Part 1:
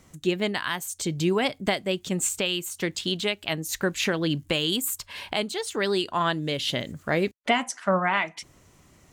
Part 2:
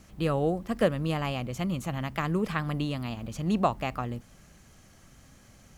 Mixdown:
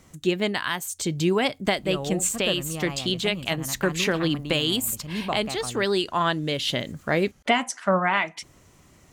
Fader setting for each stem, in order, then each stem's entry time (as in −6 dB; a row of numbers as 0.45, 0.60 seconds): +1.5, −4.5 decibels; 0.00, 1.65 seconds